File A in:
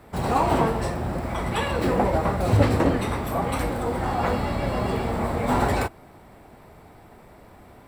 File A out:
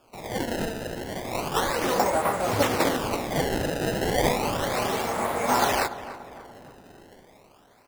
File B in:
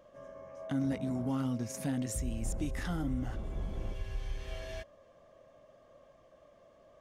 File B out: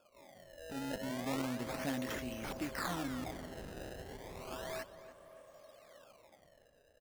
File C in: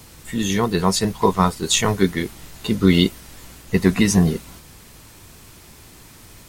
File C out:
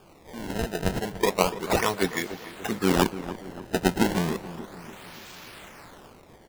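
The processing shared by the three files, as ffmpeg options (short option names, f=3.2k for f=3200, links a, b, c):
-filter_complex "[0:a]acrossover=split=4700[a][b];[b]acompressor=threshold=-44dB:ratio=4:attack=1:release=60[c];[a][c]amix=inputs=2:normalize=0,highpass=f=750:p=1,dynaudnorm=f=170:g=11:m=10dB,acrusher=samples=22:mix=1:aa=0.000001:lfo=1:lforange=35.2:lforate=0.33,asplit=2[d][e];[e]adelay=290,lowpass=f=2k:p=1,volume=-13dB,asplit=2[f][g];[g]adelay=290,lowpass=f=2k:p=1,volume=0.51,asplit=2[h][i];[i]adelay=290,lowpass=f=2k:p=1,volume=0.51,asplit=2[j][k];[k]adelay=290,lowpass=f=2k:p=1,volume=0.51,asplit=2[l][m];[m]adelay=290,lowpass=f=2k:p=1,volume=0.51[n];[d][f][h][j][l][n]amix=inputs=6:normalize=0,volume=-5dB"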